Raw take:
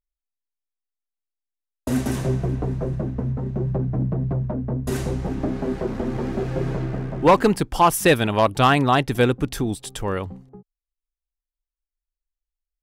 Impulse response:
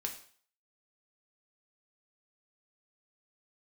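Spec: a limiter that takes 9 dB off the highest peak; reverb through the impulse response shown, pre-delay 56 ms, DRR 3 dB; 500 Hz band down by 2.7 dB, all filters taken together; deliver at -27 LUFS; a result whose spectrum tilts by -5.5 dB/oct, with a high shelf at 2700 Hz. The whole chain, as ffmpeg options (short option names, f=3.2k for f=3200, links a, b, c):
-filter_complex "[0:a]equalizer=f=500:t=o:g=-3.5,highshelf=f=2.7k:g=3.5,alimiter=limit=-13.5dB:level=0:latency=1,asplit=2[a][b];[1:a]atrim=start_sample=2205,adelay=56[c];[b][c]afir=irnorm=-1:irlink=0,volume=-3.5dB[d];[a][d]amix=inputs=2:normalize=0,volume=-3dB"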